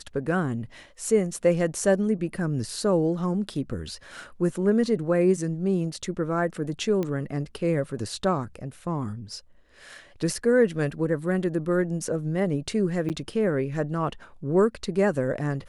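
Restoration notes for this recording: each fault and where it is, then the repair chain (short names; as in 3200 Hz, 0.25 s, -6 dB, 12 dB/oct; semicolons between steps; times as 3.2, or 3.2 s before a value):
7.03 pop -17 dBFS
13.09–13.1 gap 8.6 ms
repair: de-click; interpolate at 13.09, 8.6 ms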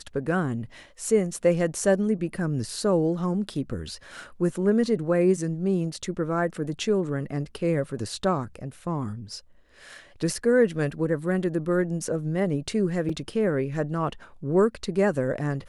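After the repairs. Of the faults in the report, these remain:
none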